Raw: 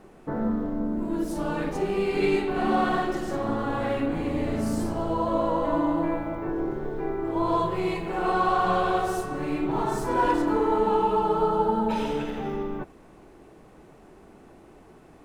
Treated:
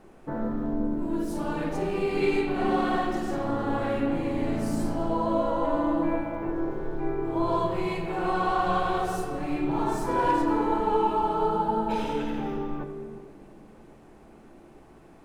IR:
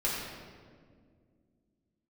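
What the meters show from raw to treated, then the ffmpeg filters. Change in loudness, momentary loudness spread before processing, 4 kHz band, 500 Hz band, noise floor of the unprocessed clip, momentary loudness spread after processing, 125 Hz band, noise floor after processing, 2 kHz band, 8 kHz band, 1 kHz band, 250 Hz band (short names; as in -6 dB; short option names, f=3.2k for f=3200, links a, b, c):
-1.5 dB, 7 LU, -1.5 dB, -2.0 dB, -51 dBFS, 7 LU, -1.0 dB, -52 dBFS, -2.0 dB, -2.0 dB, -1.0 dB, -1.0 dB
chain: -filter_complex "[0:a]asplit=2[a][b];[1:a]atrim=start_sample=2205[c];[b][c]afir=irnorm=-1:irlink=0,volume=-10dB[d];[a][d]amix=inputs=2:normalize=0,volume=-4.5dB"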